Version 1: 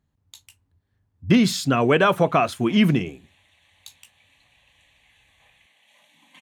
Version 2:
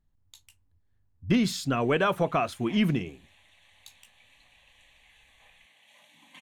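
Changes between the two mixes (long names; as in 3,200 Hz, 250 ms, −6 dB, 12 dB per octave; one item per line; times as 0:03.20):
speech −7.0 dB
master: remove high-pass filter 76 Hz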